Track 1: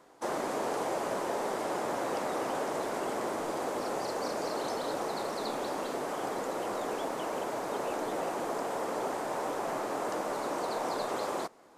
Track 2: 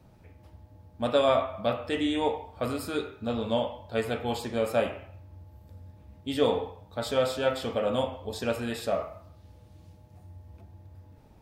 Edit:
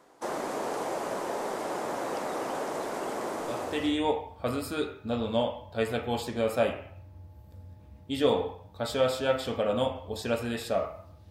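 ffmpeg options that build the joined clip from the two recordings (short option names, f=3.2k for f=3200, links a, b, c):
-filter_complex "[0:a]apad=whole_dur=11.3,atrim=end=11.3,atrim=end=4.02,asetpts=PTS-STARTPTS[a];[1:a]atrim=start=1.57:end=9.47,asetpts=PTS-STARTPTS[b];[a][b]acrossfade=d=0.62:c1=qsin:c2=qsin"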